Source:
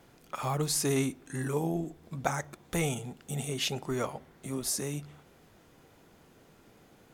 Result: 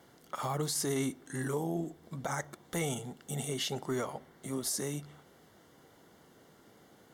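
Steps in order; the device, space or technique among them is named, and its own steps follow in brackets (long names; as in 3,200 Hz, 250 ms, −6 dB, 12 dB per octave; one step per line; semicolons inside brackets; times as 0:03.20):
PA system with an anti-feedback notch (high-pass filter 140 Hz 6 dB per octave; Butterworth band-reject 2,500 Hz, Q 6.4; brickwall limiter −23.5 dBFS, peak gain reduction 11 dB)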